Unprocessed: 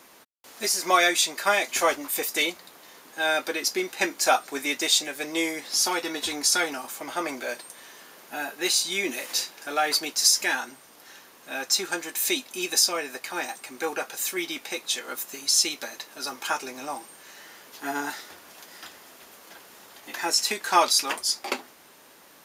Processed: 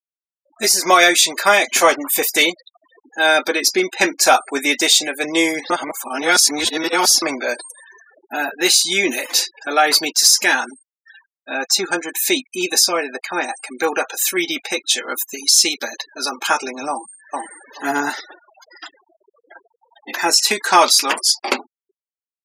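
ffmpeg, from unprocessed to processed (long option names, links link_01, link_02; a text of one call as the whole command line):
ffmpeg -i in.wav -filter_complex "[0:a]asettb=1/sr,asplit=3[link_01][link_02][link_03];[link_01]atrim=end=11.514[link_04];[link_02]atrim=start=11.51:end=13.53,asetpts=PTS-STARTPTS,afade=type=in:duration=0.004:curve=qsin,afade=type=out:start_time=2.016:duration=0.004:curve=qsin,highshelf=frequency=2300:gain=-4[link_05];[link_03]atrim=start=13.526[link_06];[link_04][link_05]acrossfade=duration=0.004:curve1=hsin:curve2=qsin[link_07];[link_07][link_06]acrossfade=duration=0.004:curve1=qsin:curve2=hsin,asplit=2[link_08][link_09];[link_09]afade=type=in:start_time=16.9:duration=0.01,afade=type=out:start_time=17.76:duration=0.01,aecho=0:1:430|860|1290:0.891251|0.133688|0.0200531[link_10];[link_08][link_10]amix=inputs=2:normalize=0,asplit=3[link_11][link_12][link_13];[link_11]atrim=end=5.702[link_14];[link_12]atrim=start=5.698:end=7.222,asetpts=PTS-STARTPTS,areverse[link_15];[link_13]atrim=start=7.218[link_16];[link_14][link_15]acrossfade=duration=0.004:curve1=hsin:curve2=hsin[link_17];[link_17][link_16]acrossfade=duration=0.004:curve1=hsin:curve2=hsin,afftfilt=real='re*gte(hypot(re,im),0.0126)':imag='im*gte(hypot(re,im),0.0126)':win_size=1024:overlap=0.75,acontrast=28,alimiter=level_in=6dB:limit=-1dB:release=50:level=0:latency=1,volume=-1dB" out.wav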